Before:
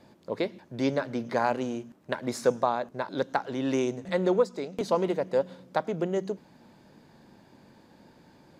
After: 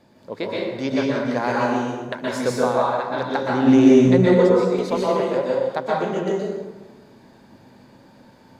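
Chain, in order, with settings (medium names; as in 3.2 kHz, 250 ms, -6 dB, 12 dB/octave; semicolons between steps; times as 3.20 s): 3.50–4.34 s: bass shelf 470 Hz +11.5 dB; plate-style reverb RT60 1.3 s, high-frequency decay 0.65×, pre-delay 110 ms, DRR -5 dB; dynamic bell 2.7 kHz, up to +3 dB, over -41 dBFS, Q 0.7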